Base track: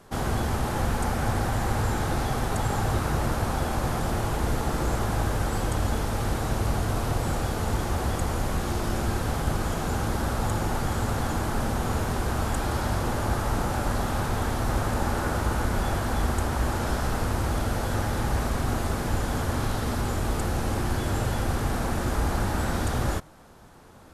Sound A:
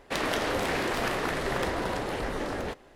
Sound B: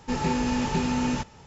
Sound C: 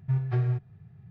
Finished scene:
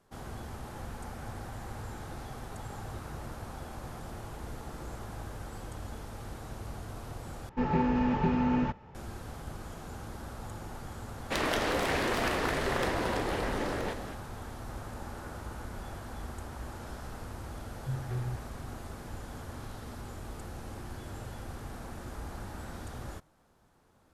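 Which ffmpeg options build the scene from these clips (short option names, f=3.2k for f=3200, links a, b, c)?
-filter_complex "[0:a]volume=-15.5dB[a];[2:a]lowpass=1.8k[b];[1:a]asplit=6[c][d][e][f][g][h];[d]adelay=365,afreqshift=-34,volume=-11dB[i];[e]adelay=730,afreqshift=-68,volume=-17.9dB[j];[f]adelay=1095,afreqshift=-102,volume=-24.9dB[k];[g]adelay=1460,afreqshift=-136,volume=-31.8dB[l];[h]adelay=1825,afreqshift=-170,volume=-38.7dB[m];[c][i][j][k][l][m]amix=inputs=6:normalize=0[n];[a]asplit=2[o][p];[o]atrim=end=7.494[q];[b]atrim=end=1.46,asetpts=PTS-STARTPTS,volume=-1.5dB[r];[p]atrim=start=8.946[s];[n]atrim=end=2.95,asetpts=PTS-STARTPTS,volume=-1.5dB,afade=t=in:d=0.004:c=hsin,afade=t=out:st=2.946:d=0.004:c=hsin,adelay=11200[t];[3:a]atrim=end=1.1,asetpts=PTS-STARTPTS,volume=-9dB,afade=t=in:d=0.004:c=hsin,afade=t=out:st=1.096:d=0.004:c=hsin,adelay=17780[u];[q][r]acrossfade=d=0.004:c1=hsin:c2=hsin[v];[v][s]acrossfade=d=0.004:c1=hsin:c2=hsin[w];[w][t][u]amix=inputs=3:normalize=0"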